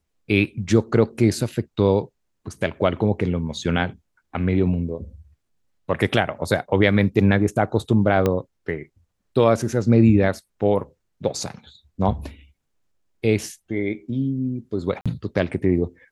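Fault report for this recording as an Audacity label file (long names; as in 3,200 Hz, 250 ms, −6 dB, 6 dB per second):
8.260000	8.260000	click −8 dBFS
15.010000	15.060000	drop-out 46 ms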